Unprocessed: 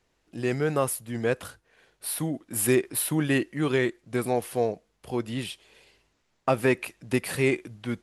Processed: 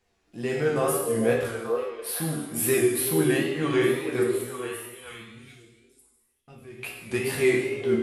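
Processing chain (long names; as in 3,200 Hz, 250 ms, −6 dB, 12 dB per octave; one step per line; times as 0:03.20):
0:04.24–0:06.78: guitar amp tone stack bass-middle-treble 10-0-1
resonators tuned to a chord D#2 major, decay 0.23 s
reverb whose tail is shaped and stops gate 410 ms falling, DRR −1 dB
tape wow and flutter 71 cents
on a send: echo through a band-pass that steps 442 ms, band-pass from 440 Hz, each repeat 1.4 octaves, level −3 dB
on the sum: level +8 dB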